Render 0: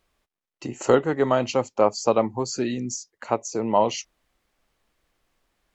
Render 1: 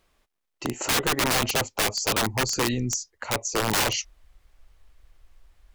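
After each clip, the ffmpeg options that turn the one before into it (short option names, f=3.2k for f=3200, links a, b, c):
-af "asubboost=boost=11:cutoff=69,aeval=exprs='(mod(11.2*val(0)+1,2)-1)/11.2':c=same,volume=4dB"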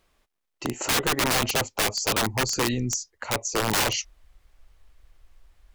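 -af anull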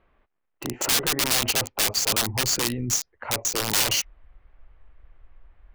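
-filter_complex "[0:a]acrossover=split=2600[a][b];[a]alimiter=level_in=2.5dB:limit=-24dB:level=0:latency=1:release=24,volume=-2.5dB[c];[b]acrusher=bits=4:mix=0:aa=0.000001[d];[c][d]amix=inputs=2:normalize=0,volume=4dB"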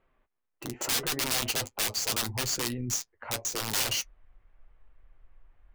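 -af "flanger=delay=7.6:depth=1.1:regen=-41:speed=0.78:shape=triangular,volume=-2.5dB"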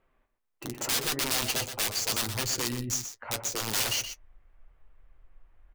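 -af "aecho=1:1:123:0.335"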